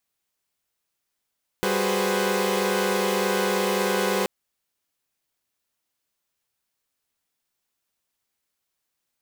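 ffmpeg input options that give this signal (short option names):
-f lavfi -i "aevalsrc='0.0531*((2*mod(196*t,1)-1)+(2*mod(369.99*t,1)-1)+(2*mod(415.3*t,1)-1)+(2*mod(493.88*t,1)-1)+(2*mod(523.25*t,1)-1))':d=2.63:s=44100"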